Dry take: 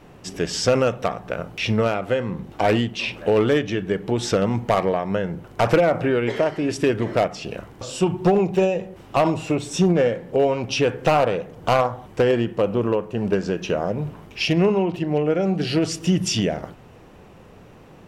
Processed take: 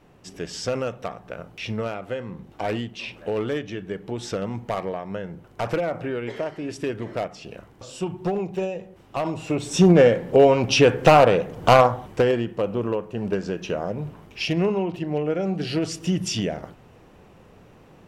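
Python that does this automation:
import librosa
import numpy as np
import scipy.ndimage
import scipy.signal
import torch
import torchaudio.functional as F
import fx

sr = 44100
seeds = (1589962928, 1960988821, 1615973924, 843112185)

y = fx.gain(x, sr, db=fx.line((9.22, -8.0), (9.93, 4.5), (11.9, 4.5), (12.42, -4.0)))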